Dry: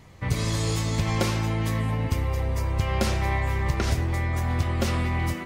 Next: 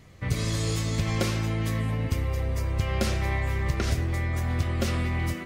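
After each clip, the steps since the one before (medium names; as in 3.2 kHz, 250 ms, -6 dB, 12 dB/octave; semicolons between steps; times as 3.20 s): peaking EQ 900 Hz -8 dB 0.39 oct; trim -1.5 dB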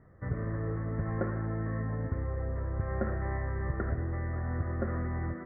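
rippled Chebyshev low-pass 1.9 kHz, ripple 3 dB; trim -3.5 dB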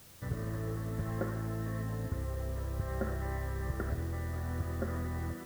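added noise white -54 dBFS; trim -3 dB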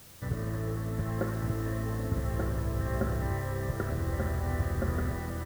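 delay 1185 ms -3 dB; trim +3.5 dB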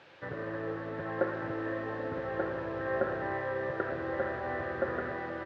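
cabinet simulation 220–3700 Hz, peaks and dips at 220 Hz -8 dB, 340 Hz +4 dB, 540 Hz +8 dB, 860 Hz +7 dB, 1.6 kHz +9 dB, 2.5 kHz +5 dB; trim -1.5 dB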